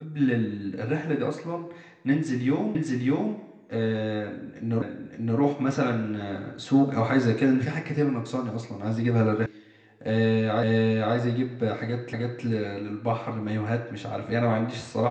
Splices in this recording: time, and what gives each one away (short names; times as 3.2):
2.75 repeat of the last 0.6 s
4.82 repeat of the last 0.57 s
9.46 sound cut off
10.63 repeat of the last 0.53 s
12.13 repeat of the last 0.31 s